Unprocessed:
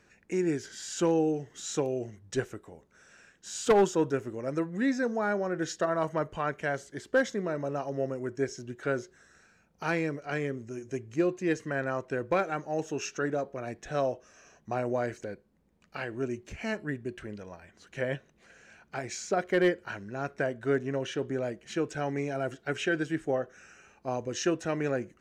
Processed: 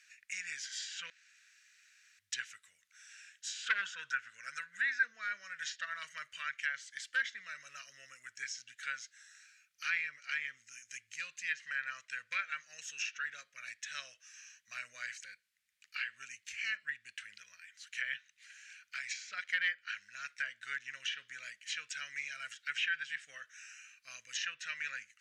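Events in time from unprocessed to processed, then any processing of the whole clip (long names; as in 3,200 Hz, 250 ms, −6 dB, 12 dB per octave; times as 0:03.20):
0:01.10–0:02.19: fill with room tone
0:03.63–0:05.03: parametric band 1,500 Hz +13.5 dB 0.28 octaves
whole clip: inverse Chebyshev high-pass filter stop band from 910 Hz, stop band 40 dB; treble cut that deepens with the level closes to 2,700 Hz, closed at −37 dBFS; level +5.5 dB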